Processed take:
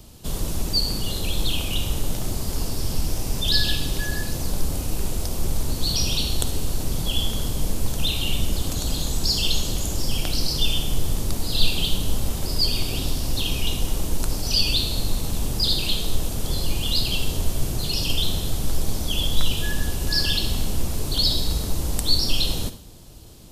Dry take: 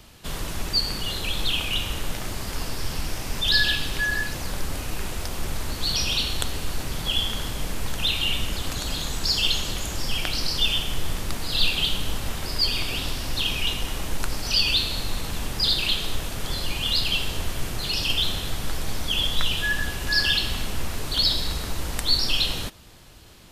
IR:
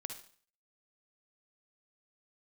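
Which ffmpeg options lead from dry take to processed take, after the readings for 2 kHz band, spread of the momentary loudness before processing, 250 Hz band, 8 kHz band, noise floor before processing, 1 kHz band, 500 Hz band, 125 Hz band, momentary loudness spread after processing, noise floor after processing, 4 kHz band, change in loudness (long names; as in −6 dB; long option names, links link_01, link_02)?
−7.0 dB, 11 LU, +4.5 dB, +3.5 dB, −33 dBFS, −2.0 dB, +2.5 dB, +5.5 dB, 7 LU, −30 dBFS, −1.0 dB, 0.0 dB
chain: -filter_complex "[0:a]equalizer=frequency=1800:width=0.64:gain=-14,asplit=2[link_01][link_02];[1:a]atrim=start_sample=2205[link_03];[link_02][link_03]afir=irnorm=-1:irlink=0,volume=2dB[link_04];[link_01][link_04]amix=inputs=2:normalize=0"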